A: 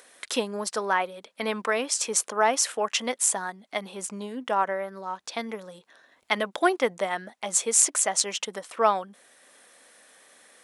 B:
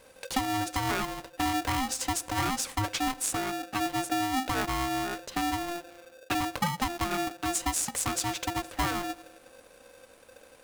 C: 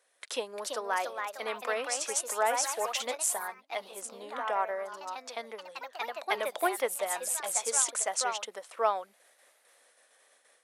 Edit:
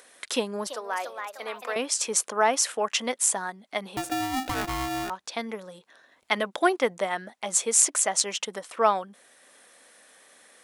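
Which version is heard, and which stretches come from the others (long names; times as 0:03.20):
A
0:00.67–0:01.76: punch in from C
0:03.97–0:05.10: punch in from B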